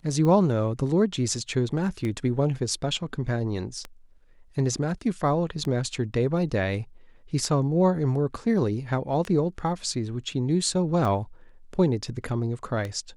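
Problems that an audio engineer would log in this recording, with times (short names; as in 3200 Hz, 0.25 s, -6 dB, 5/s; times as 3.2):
tick 33 1/3 rpm -18 dBFS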